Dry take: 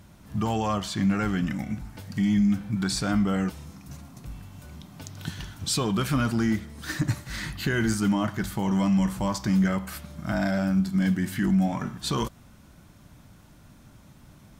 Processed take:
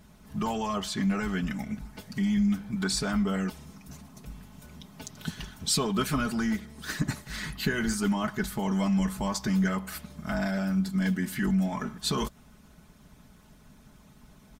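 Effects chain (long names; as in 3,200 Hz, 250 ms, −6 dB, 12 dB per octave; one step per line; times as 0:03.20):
comb filter 4.7 ms, depth 79%
harmonic and percussive parts rebalanced harmonic −8 dB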